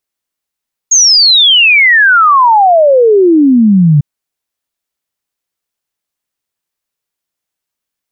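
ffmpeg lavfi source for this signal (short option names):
-f lavfi -i "aevalsrc='0.708*clip(min(t,3.1-t)/0.01,0,1)*sin(2*PI*6700*3.1/log(140/6700)*(exp(log(140/6700)*t/3.1)-1))':d=3.1:s=44100"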